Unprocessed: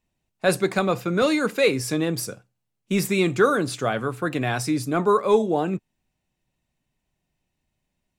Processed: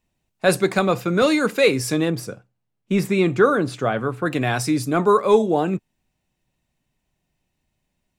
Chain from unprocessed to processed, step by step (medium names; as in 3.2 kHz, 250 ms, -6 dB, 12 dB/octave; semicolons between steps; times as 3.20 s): 2.10–4.26 s: treble shelf 3.6 kHz -11.5 dB; trim +3 dB